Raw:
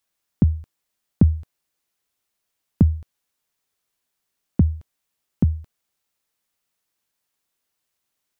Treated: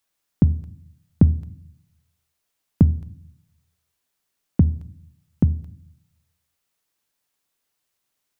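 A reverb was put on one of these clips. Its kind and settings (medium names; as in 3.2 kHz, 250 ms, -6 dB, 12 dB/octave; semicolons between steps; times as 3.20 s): simulated room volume 800 m³, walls furnished, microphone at 0.33 m; trim +1 dB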